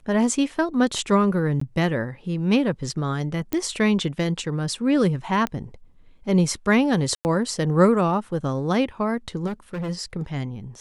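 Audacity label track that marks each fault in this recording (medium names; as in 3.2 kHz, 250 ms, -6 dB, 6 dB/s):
1.600000	1.610000	dropout 14 ms
3.530000	3.530000	pop -11 dBFS
5.470000	5.470000	pop -13 dBFS
7.150000	7.250000	dropout 99 ms
9.460000	9.900000	clipped -26 dBFS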